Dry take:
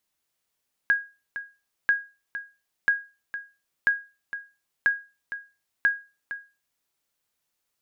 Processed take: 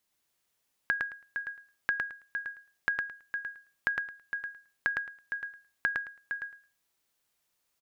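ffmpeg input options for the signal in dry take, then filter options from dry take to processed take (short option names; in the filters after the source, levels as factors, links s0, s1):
-f lavfi -i "aevalsrc='0.224*(sin(2*PI*1640*mod(t,0.99))*exp(-6.91*mod(t,0.99)/0.3)+0.237*sin(2*PI*1640*max(mod(t,0.99)-0.46,0))*exp(-6.91*max(mod(t,0.99)-0.46,0)/0.3))':d=5.94:s=44100"
-filter_complex "[0:a]acompressor=threshold=0.0447:ratio=6,asplit=2[s0][s1];[s1]aecho=0:1:109|218|327:0.631|0.107|0.0182[s2];[s0][s2]amix=inputs=2:normalize=0"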